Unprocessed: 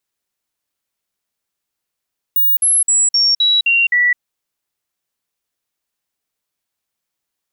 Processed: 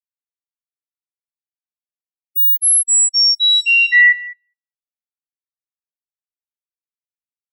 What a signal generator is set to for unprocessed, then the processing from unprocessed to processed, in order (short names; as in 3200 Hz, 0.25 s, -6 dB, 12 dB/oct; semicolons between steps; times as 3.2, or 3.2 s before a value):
stepped sine 15600 Hz down, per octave 2, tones 7, 0.21 s, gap 0.05 s -10 dBFS
bell 1700 Hz +5 dB 0.25 oct; on a send: delay with a stepping band-pass 0.204 s, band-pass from 2500 Hz, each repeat 0.7 oct, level -7 dB; on the sum: spectral expander 2.5:1